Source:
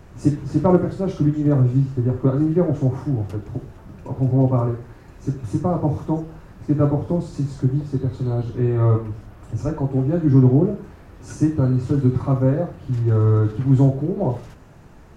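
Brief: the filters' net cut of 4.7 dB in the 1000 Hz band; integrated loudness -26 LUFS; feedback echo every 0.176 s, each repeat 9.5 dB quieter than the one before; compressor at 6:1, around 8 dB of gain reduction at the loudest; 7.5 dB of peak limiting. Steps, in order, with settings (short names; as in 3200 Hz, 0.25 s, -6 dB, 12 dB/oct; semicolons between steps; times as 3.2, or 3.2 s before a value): bell 1000 Hz -6.5 dB; compressor 6:1, threshold -18 dBFS; limiter -16.5 dBFS; feedback echo 0.176 s, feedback 33%, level -9.5 dB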